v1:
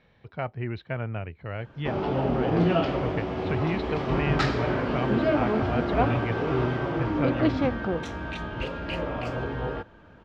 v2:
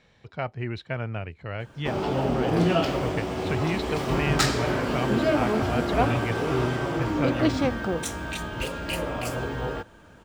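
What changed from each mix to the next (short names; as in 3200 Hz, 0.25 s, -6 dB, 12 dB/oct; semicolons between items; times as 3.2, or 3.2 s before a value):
master: remove air absorption 230 m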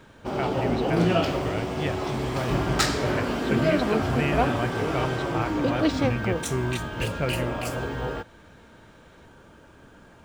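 background: entry -1.60 s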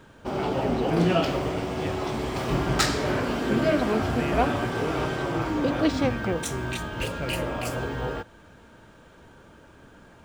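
speech -6.5 dB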